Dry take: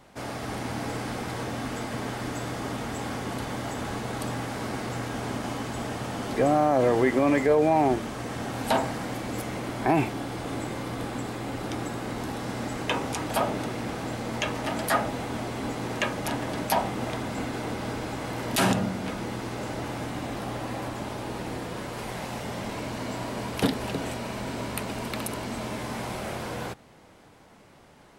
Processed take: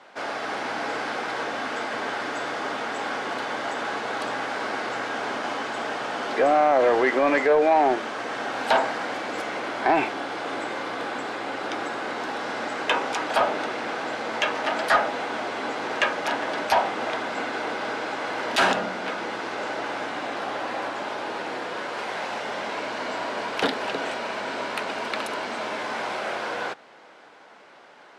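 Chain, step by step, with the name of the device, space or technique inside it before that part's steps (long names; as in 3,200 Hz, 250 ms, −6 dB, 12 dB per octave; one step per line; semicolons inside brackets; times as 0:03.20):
intercom (band-pass filter 470–4,600 Hz; parametric band 1,500 Hz +5 dB 0.27 octaves; soft clipping −17 dBFS, distortion −19 dB)
level +6.5 dB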